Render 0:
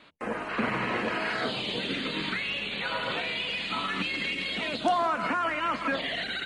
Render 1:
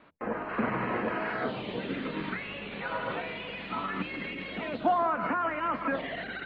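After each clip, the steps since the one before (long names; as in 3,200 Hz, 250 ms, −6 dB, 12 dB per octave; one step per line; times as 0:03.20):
low-pass filter 1,600 Hz 12 dB per octave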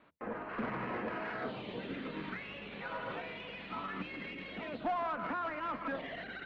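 tube saturation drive 22 dB, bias 0.25
level −6 dB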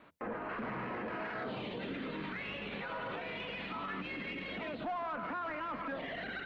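brickwall limiter −37 dBFS, peak gain reduction 10 dB
level +5 dB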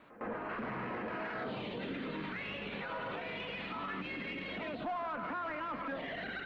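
echo ahead of the sound 108 ms −16 dB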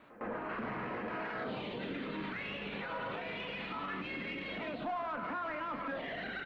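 double-tracking delay 35 ms −11 dB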